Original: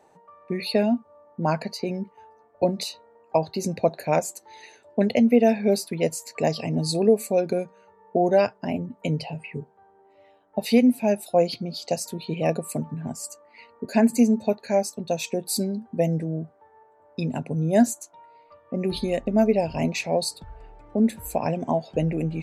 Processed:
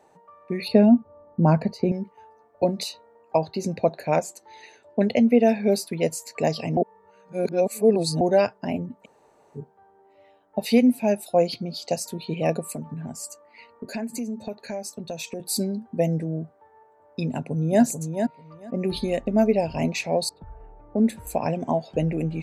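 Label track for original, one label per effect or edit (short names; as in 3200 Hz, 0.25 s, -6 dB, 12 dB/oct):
0.680000	1.920000	tilt -3.5 dB/oct
3.460000	5.470000	high shelf 7800 Hz -> 11000 Hz -11 dB
6.770000	8.210000	reverse
9.030000	9.570000	room tone, crossfade 0.06 s
12.710000	15.400000	compressor 4:1, threshold -29 dBFS
17.270000	17.820000	echo throw 0.44 s, feedback 15%, level -6.5 dB
20.290000	21.270000	low-pass opened by the level closes to 1000 Hz, open at -18.5 dBFS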